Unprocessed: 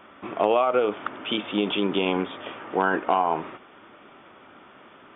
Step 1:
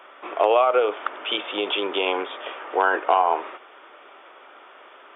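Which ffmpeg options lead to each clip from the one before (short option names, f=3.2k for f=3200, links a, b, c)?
-af "highpass=f=410:w=0.5412,highpass=f=410:w=1.3066,volume=3.5dB"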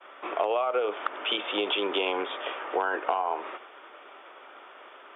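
-filter_complex "[0:a]agate=range=-33dB:threshold=-45dB:ratio=3:detection=peak,acrossover=split=180[a][b];[b]acompressor=threshold=-24dB:ratio=5[c];[a][c]amix=inputs=2:normalize=0"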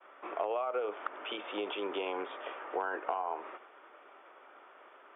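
-af "lowpass=2.3k,volume=-7dB"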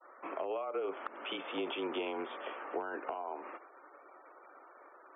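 -filter_complex "[0:a]afftfilt=real='re*gte(hypot(re,im),0.002)':imag='im*gte(hypot(re,im),0.002)':win_size=1024:overlap=0.75,acrossover=split=490|3000[a][b][c];[b]acompressor=threshold=-38dB:ratio=6[d];[a][d][c]amix=inputs=3:normalize=0,afreqshift=-29"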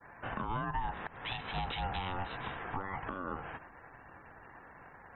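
-af "alimiter=level_in=5.5dB:limit=-24dB:level=0:latency=1:release=273,volume=-5.5dB,aeval=exprs='val(0)*sin(2*PI*440*n/s)':c=same,volume=6dB"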